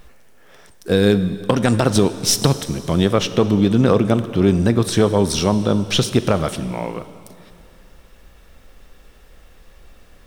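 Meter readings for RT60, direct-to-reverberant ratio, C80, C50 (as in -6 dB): 2.5 s, 12.0 dB, 13.5 dB, 13.0 dB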